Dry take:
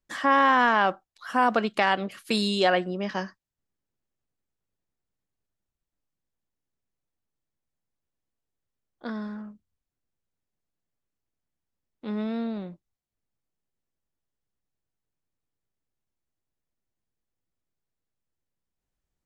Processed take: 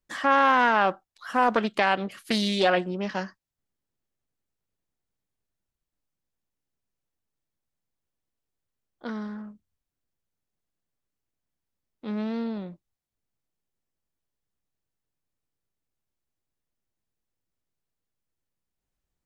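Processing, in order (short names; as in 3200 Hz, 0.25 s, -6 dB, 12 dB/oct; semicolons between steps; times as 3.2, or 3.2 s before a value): Doppler distortion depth 0.22 ms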